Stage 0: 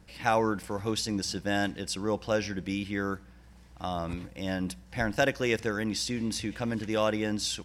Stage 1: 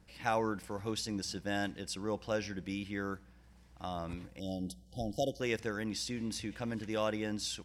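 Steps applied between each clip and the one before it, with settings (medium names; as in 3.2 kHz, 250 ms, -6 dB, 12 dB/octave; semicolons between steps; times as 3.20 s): spectral selection erased 4.40–5.41 s, 810–2900 Hz; trim -6.5 dB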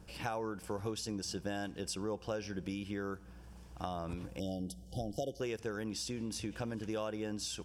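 compression 6:1, threshold -43 dBFS, peak gain reduction 15 dB; graphic EQ with 31 bands 250 Hz -3 dB, 400 Hz +4 dB, 2 kHz -10 dB, 4 kHz -6 dB; trim +7.5 dB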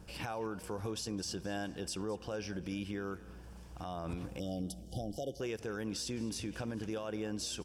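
peak limiter -31.5 dBFS, peak gain reduction 9.5 dB; frequency-shifting echo 213 ms, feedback 42%, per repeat +34 Hz, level -19.5 dB; trim +2 dB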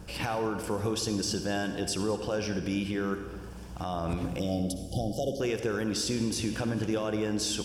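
reverberation RT60 1.3 s, pre-delay 53 ms, DRR 8 dB; trim +8 dB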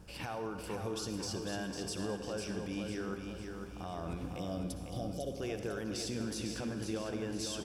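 feedback delay 501 ms, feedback 46%, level -6 dB; trim -9 dB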